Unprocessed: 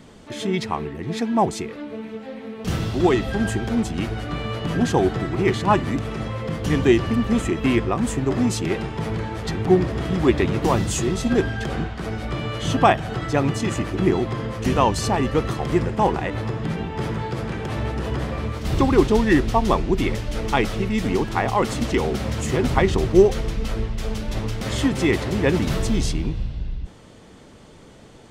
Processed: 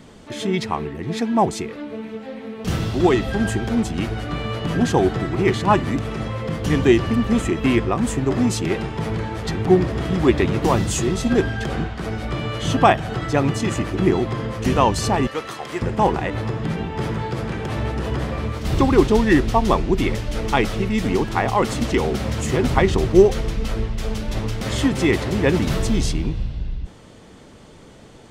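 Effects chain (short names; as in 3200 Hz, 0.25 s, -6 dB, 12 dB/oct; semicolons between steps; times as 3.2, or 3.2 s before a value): 15.27–15.82 HPF 1000 Hz 6 dB/oct; gain +1.5 dB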